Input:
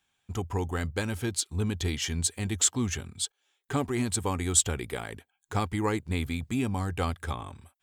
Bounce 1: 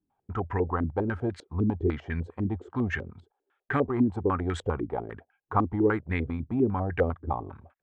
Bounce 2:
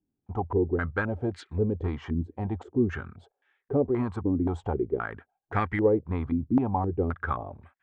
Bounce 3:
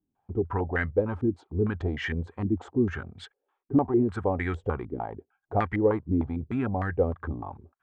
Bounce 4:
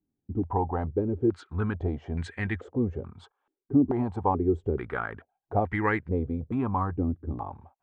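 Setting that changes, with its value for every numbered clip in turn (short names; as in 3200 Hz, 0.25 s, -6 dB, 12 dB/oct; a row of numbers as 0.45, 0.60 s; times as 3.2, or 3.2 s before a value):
stepped low-pass, rate: 10, 3.8, 6.6, 2.3 Hz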